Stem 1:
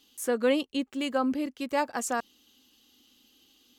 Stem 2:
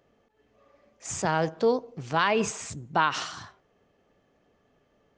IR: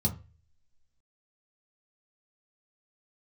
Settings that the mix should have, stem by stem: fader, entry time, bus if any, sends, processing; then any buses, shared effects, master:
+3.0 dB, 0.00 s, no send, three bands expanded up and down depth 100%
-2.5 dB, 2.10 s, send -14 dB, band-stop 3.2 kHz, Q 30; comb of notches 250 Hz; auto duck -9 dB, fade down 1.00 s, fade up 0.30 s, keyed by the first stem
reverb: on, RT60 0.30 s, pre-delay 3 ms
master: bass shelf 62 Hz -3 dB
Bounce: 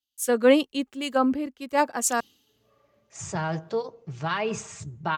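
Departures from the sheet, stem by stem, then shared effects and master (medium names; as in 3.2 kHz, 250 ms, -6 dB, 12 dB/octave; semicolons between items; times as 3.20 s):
stem 2: send -14 dB -> -22.5 dB; master: missing bass shelf 62 Hz -3 dB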